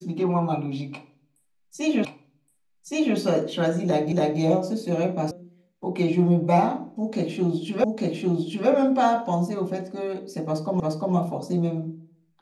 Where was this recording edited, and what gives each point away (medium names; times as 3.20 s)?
2.05 s: repeat of the last 1.12 s
4.12 s: repeat of the last 0.28 s
5.31 s: sound stops dead
7.84 s: repeat of the last 0.85 s
10.80 s: repeat of the last 0.35 s